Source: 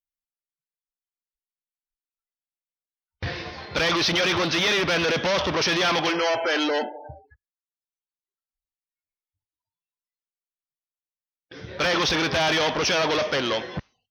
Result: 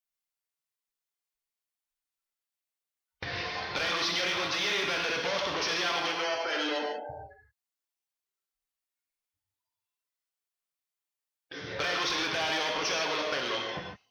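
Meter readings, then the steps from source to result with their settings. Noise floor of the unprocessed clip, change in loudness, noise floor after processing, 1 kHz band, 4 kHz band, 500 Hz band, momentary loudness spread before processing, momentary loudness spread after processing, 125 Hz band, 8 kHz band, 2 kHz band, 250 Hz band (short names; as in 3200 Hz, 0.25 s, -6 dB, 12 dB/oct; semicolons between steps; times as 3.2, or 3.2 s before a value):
under -85 dBFS, -7.5 dB, under -85 dBFS, -6.5 dB, -6.0 dB, -9.0 dB, 13 LU, 12 LU, -13.5 dB, -6.0 dB, -6.0 dB, -11.5 dB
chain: compressor 6:1, threshold -32 dBFS, peak gain reduction 11.5 dB; low shelf 360 Hz -10 dB; non-linear reverb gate 0.18 s flat, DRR 0 dB; gain +1.5 dB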